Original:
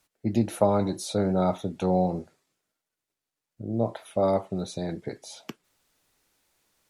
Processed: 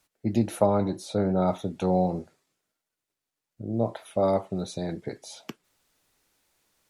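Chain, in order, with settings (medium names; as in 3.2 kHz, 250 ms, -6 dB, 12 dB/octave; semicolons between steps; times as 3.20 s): 0.66–1.48 s: treble shelf 3.7 kHz -9 dB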